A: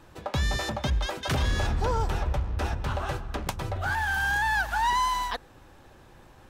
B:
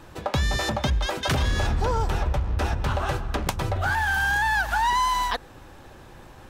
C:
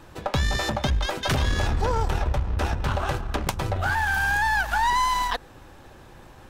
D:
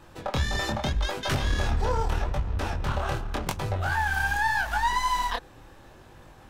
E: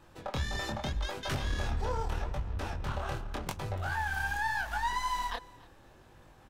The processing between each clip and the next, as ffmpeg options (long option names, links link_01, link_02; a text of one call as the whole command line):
ffmpeg -i in.wav -af "acompressor=threshold=-28dB:ratio=2.5,volume=6.5dB" out.wav
ffmpeg -i in.wav -af "aeval=exprs='0.251*(cos(1*acos(clip(val(0)/0.251,-1,1)))-cos(1*PI/2))+0.0251*(cos(4*acos(clip(val(0)/0.251,-1,1)))-cos(4*PI/2))+0.00794*(cos(6*acos(clip(val(0)/0.251,-1,1)))-cos(6*PI/2))+0.00447*(cos(7*acos(clip(val(0)/0.251,-1,1)))-cos(7*PI/2))+0.00447*(cos(8*acos(clip(val(0)/0.251,-1,1)))-cos(8*PI/2))':channel_layout=same" out.wav
ffmpeg -i in.wav -af "flanger=delay=20:depth=8:speed=0.81" out.wav
ffmpeg -i in.wav -af "aecho=1:1:287:0.0794,volume=-7dB" out.wav